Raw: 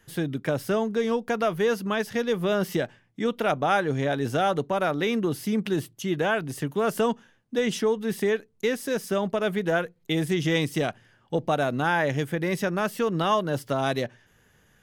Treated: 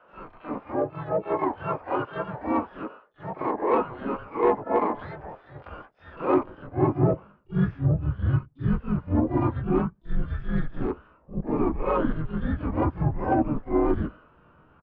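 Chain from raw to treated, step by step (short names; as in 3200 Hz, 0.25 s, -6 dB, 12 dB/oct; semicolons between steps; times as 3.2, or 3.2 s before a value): HPF 87 Hz 6 dB/oct; doubler 18 ms -4 dB; reverse; compressor 6:1, threshold -30 dBFS, peak gain reduction 12.5 dB; reverse; harmonic-percussive split percussive -10 dB; high-pass sweep 970 Hz -> 250 Hz, 6.1–8.02; mistuned SSB -300 Hz 230–2000 Hz; bell 410 Hz +8 dB 2.3 oct; harmoniser -5 st -5 dB, -3 st -8 dB, +12 st -14 dB; on a send: reverse echo 44 ms -10 dB; on the sum: dynamic EQ 980 Hz, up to +4 dB, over -43 dBFS, Q 3.8; soft clip -13.5 dBFS, distortion -22 dB; gain +3 dB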